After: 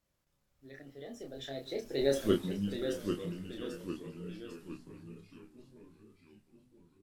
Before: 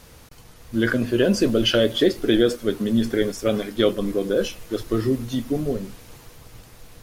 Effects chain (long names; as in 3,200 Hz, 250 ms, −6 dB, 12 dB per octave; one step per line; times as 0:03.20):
source passing by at 0:02.25, 51 m/s, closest 3.9 metres
delay with pitch and tempo change per echo 656 ms, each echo −1 semitone, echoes 3, each echo −6 dB
double-tracking delay 29 ms −5 dB
level −4 dB